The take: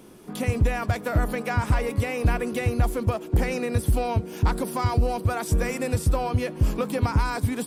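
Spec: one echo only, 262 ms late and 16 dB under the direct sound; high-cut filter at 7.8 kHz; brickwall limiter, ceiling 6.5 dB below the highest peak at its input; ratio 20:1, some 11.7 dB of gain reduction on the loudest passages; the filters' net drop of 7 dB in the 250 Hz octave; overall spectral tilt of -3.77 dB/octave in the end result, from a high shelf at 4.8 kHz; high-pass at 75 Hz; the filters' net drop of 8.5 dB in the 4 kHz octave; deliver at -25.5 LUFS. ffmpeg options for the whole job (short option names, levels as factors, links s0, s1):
-af "highpass=75,lowpass=7800,equalizer=f=250:t=o:g=-9,equalizer=f=4000:t=o:g=-7,highshelf=f=4800:g=-8,acompressor=threshold=0.0282:ratio=20,alimiter=level_in=1.68:limit=0.0631:level=0:latency=1,volume=0.596,aecho=1:1:262:0.158,volume=4.47"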